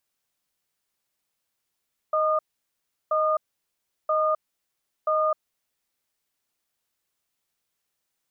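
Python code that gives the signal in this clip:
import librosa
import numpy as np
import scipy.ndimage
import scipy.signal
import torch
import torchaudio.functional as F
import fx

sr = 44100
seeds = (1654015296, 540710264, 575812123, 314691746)

y = fx.cadence(sr, length_s=3.88, low_hz=623.0, high_hz=1220.0, on_s=0.26, off_s=0.72, level_db=-22.5)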